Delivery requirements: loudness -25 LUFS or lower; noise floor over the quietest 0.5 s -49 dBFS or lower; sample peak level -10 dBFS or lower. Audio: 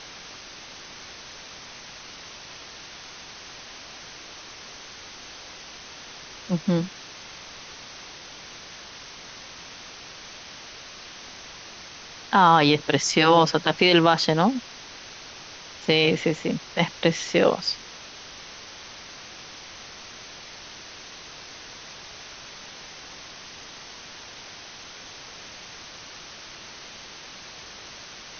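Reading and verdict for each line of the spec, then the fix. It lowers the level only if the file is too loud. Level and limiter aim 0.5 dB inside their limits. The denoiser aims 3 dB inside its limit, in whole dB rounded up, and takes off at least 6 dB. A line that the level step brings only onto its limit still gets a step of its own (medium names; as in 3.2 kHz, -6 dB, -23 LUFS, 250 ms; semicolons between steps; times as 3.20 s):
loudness -21.0 LUFS: fail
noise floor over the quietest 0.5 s -43 dBFS: fail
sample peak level -5.5 dBFS: fail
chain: noise reduction 6 dB, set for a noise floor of -43 dBFS; trim -4.5 dB; peak limiter -10.5 dBFS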